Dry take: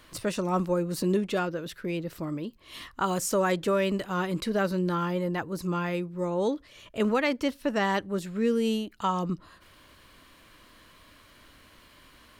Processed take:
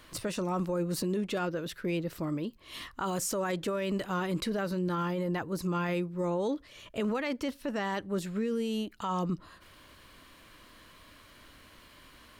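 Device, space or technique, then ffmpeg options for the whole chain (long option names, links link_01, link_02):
stacked limiters: -af "alimiter=limit=-19dB:level=0:latency=1:release=247,alimiter=limit=-24dB:level=0:latency=1:release=12"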